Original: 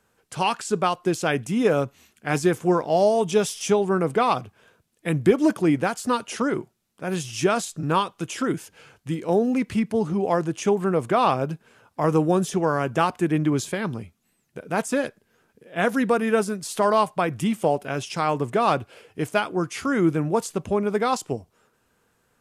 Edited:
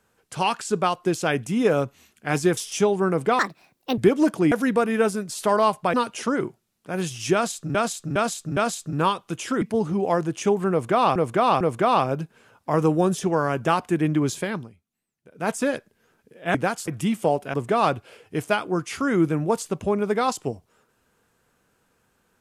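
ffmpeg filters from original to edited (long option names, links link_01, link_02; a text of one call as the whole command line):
ffmpeg -i in.wav -filter_complex "[0:a]asplit=17[link_01][link_02][link_03][link_04][link_05][link_06][link_07][link_08][link_09][link_10][link_11][link_12][link_13][link_14][link_15][link_16][link_17];[link_01]atrim=end=2.572[link_18];[link_02]atrim=start=3.458:end=4.284[link_19];[link_03]atrim=start=4.28:end=5.2,asetpts=PTS-STARTPTS,asetrate=69237,aresample=44100,atrim=end_sample=25842,asetpts=PTS-STARTPTS[link_20];[link_04]atrim=start=5.196:end=5.742[link_21];[link_05]atrim=start=15.848:end=17.272[link_22];[link_06]atrim=start=6.068:end=7.882[link_23];[link_07]atrim=start=7.468:end=7.882[link_24];[link_08]atrim=start=7.468:end=7.882[link_25];[link_09]atrim=start=7.468:end=8.522[link_26];[link_10]atrim=start=9.818:end=11.362[link_27];[link_11]atrim=start=10.908:end=11.362[link_28];[link_12]atrim=start=10.908:end=14,asetpts=PTS-STARTPTS,afade=type=out:start_time=2.892:duration=0.2:silence=0.188365[link_29];[link_13]atrim=start=14:end=14.6,asetpts=PTS-STARTPTS,volume=-14.5dB[link_30];[link_14]atrim=start=14.6:end=15.852,asetpts=PTS-STARTPTS,afade=type=in:duration=0.2:silence=0.188365[link_31];[link_15]atrim=start=5.738:end=6.072[link_32];[link_16]atrim=start=17.268:end=17.932[link_33];[link_17]atrim=start=18.378[link_34];[link_18][link_19]acrossfade=duration=0.004:curve1=hsin:curve2=hsin[link_35];[link_35][link_20]acrossfade=duration=0.004:curve1=hsin:curve2=hsin[link_36];[link_36][link_21]acrossfade=duration=0.004:curve1=hsin:curve2=hsin[link_37];[link_37][link_22]acrossfade=duration=0.004:curve1=hsin:curve2=hsin[link_38];[link_38][link_23]acrossfade=duration=0.004:curve1=hsin:curve2=hsin[link_39];[link_39][link_24]acrossfade=duration=0.004:curve1=hsin:curve2=hsin[link_40];[link_40][link_25]acrossfade=duration=0.004:curve1=hsin:curve2=hsin[link_41];[link_41][link_26]acrossfade=duration=0.004:curve1=hsin:curve2=hsin[link_42];[link_42][link_27]acrossfade=duration=0.004:curve1=hsin:curve2=hsin[link_43];[link_43][link_28]acrossfade=duration=0.004:curve1=hsin:curve2=hsin[link_44];[link_29][link_30][link_31]concat=n=3:v=0:a=1[link_45];[link_44][link_45]acrossfade=duration=0.004:curve1=hsin:curve2=hsin[link_46];[link_46][link_32]acrossfade=duration=0.004:curve1=hsin:curve2=hsin[link_47];[link_47][link_33]acrossfade=duration=0.004:curve1=hsin:curve2=hsin[link_48];[link_48][link_34]acrossfade=duration=0.004:curve1=hsin:curve2=hsin" out.wav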